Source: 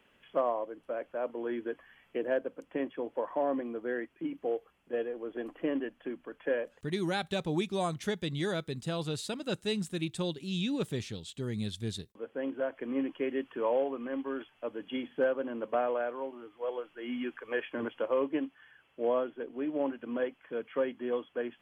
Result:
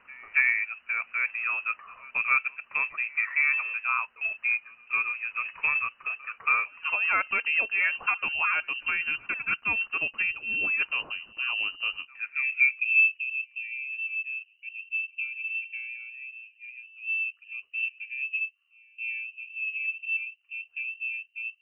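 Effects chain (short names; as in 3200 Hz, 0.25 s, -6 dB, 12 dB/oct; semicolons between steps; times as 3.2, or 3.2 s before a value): pre-echo 0.277 s -24 dB; low-pass sweep 1700 Hz -> 200 Hz, 12.12–13.21; inverted band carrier 2900 Hz; gain +4.5 dB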